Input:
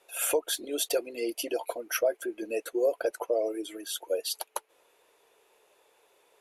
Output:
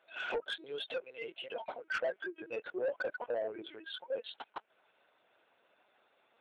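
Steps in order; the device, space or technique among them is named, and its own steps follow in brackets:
0:00.92–0:01.94: high-pass filter 510 Hz 12 dB per octave
talking toy (linear-prediction vocoder at 8 kHz pitch kept; high-pass filter 410 Hz 12 dB per octave; parametric band 1,500 Hz +9 dB 0.24 octaves; soft clipping −24.5 dBFS, distortion −14 dB)
level −4 dB

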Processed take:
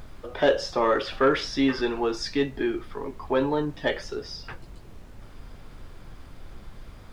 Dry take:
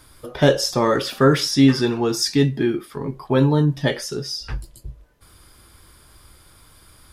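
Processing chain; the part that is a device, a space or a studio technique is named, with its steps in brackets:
aircraft cabin announcement (band-pass filter 380–3,200 Hz; soft clipping −8.5 dBFS, distortion −22 dB; brown noise bed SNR 13 dB)
level −1.5 dB

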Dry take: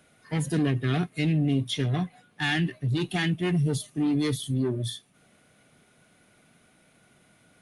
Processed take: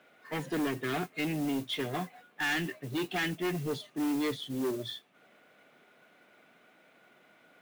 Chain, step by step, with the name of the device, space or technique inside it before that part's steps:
carbon microphone (band-pass filter 350–2,900 Hz; soft clipping −28.5 dBFS, distortion −13 dB; noise that follows the level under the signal 18 dB)
level +2.5 dB

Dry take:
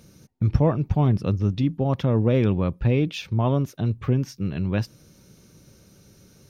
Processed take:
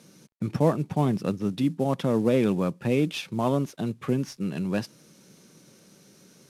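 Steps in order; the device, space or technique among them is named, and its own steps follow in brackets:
early wireless headset (high-pass filter 160 Hz 24 dB per octave; variable-slope delta modulation 64 kbit/s)

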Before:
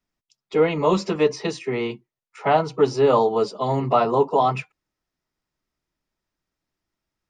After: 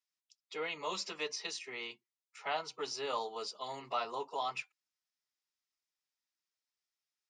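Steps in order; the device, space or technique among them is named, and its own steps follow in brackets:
piezo pickup straight into a mixer (low-pass filter 5,900 Hz 12 dB per octave; first difference)
level +1 dB

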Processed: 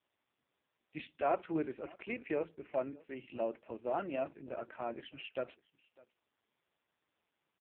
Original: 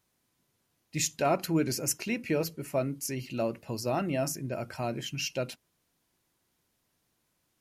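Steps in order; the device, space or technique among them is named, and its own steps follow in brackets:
satellite phone (band-pass filter 340–3,000 Hz; single-tap delay 603 ms −23.5 dB; level −3.5 dB; AMR narrowband 4.75 kbit/s 8,000 Hz)

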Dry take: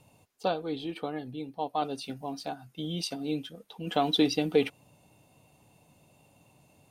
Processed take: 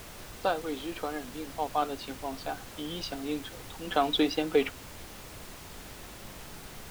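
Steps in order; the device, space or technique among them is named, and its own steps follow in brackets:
horn gramophone (band-pass filter 270–4,300 Hz; parametric band 1,400 Hz +7 dB; tape wow and flutter; pink noise bed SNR 11 dB)

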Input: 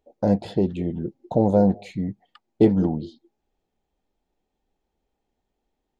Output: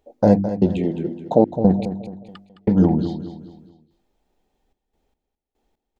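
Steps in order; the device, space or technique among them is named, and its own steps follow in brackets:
trance gate with a delay (gate pattern "xx.xxxx.x..x.xxx" 73 BPM −60 dB; repeating echo 213 ms, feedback 39%, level −11 dB)
0:00.78–0:01.50: high-pass filter 200 Hz 12 dB per octave
hum removal 49.23 Hz, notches 7
level +7 dB

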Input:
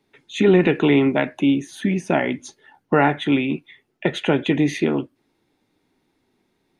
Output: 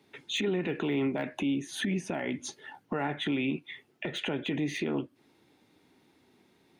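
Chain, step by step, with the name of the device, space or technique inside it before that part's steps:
broadcast voice chain (high-pass filter 74 Hz; de-essing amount 75%; downward compressor 4 to 1, threshold −31 dBFS, peak gain reduction 17 dB; parametric band 3,000 Hz +2 dB; brickwall limiter −25.5 dBFS, peak gain reduction 9 dB)
level +3.5 dB

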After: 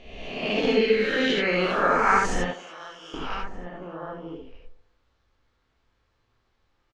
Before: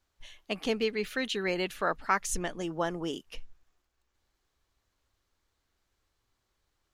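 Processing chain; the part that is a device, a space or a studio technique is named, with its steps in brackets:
peak hold with a rise ahead of every peak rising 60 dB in 1.12 s
shout across a valley (high-frequency loss of the air 160 metres; slap from a distant wall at 210 metres, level −11 dB)
0:02.44–0:03.14: first-order pre-emphasis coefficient 0.97
delay with a band-pass on its return 74 ms, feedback 54%, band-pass 570 Hz, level −12 dB
reverb whose tail is shaped and stops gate 100 ms rising, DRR −1 dB
level +2.5 dB

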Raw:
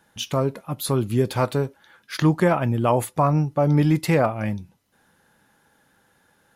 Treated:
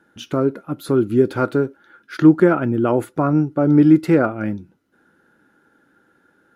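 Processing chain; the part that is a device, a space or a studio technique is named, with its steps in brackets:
inside a helmet (high-shelf EQ 5,100 Hz −6.5 dB; hollow resonant body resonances 320/1,400 Hz, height 16 dB, ringing for 20 ms)
level −5 dB

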